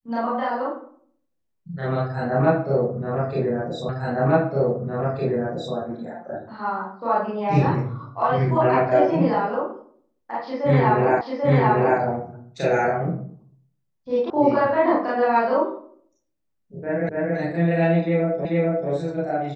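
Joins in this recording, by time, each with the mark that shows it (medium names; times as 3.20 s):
3.89 s: repeat of the last 1.86 s
11.21 s: repeat of the last 0.79 s
14.30 s: sound stops dead
17.09 s: repeat of the last 0.28 s
18.45 s: repeat of the last 0.44 s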